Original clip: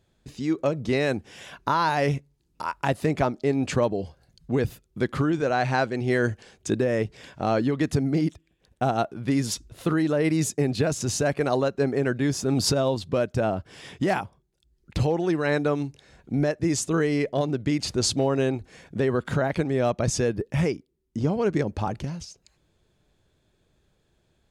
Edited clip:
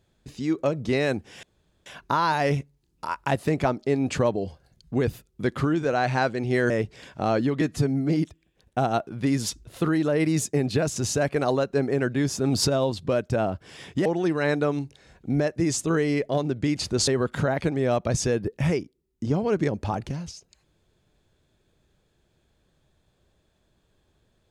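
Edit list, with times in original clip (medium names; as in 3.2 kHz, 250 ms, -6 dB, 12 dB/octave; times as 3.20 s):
1.43 s: insert room tone 0.43 s
6.27–6.91 s: delete
7.82–8.15 s: stretch 1.5×
14.10–15.09 s: delete
18.11–19.01 s: delete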